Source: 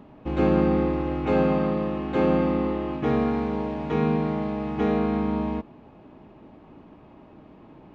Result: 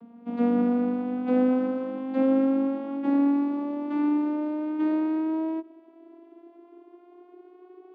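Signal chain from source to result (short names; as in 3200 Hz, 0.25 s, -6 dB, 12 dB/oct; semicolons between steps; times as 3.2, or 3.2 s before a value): vocoder on a gliding note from A#3, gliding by +8 st; ending taper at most 410 dB/s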